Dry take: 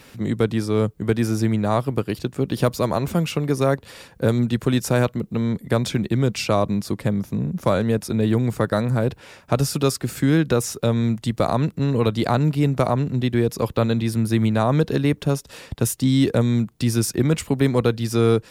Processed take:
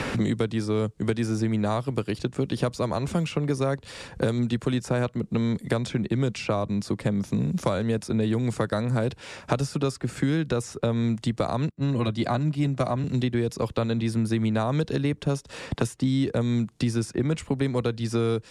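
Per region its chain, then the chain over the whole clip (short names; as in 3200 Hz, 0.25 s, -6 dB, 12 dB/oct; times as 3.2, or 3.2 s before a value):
11.69–13.04 notch comb 450 Hz + three-band expander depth 100%
whole clip: LPF 9600 Hz 24 dB/oct; three-band squash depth 100%; gain -6 dB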